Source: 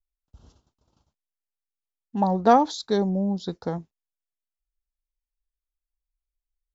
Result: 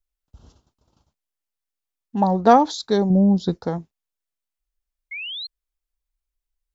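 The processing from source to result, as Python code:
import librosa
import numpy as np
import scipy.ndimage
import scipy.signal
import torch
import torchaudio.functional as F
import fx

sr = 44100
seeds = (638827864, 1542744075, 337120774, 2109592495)

y = fx.low_shelf(x, sr, hz=390.0, db=7.5, at=(3.1, 3.62))
y = fx.spec_paint(y, sr, seeds[0], shape='rise', start_s=5.11, length_s=0.36, low_hz=2100.0, high_hz=4300.0, level_db=-35.0)
y = y * 10.0 ** (3.5 / 20.0)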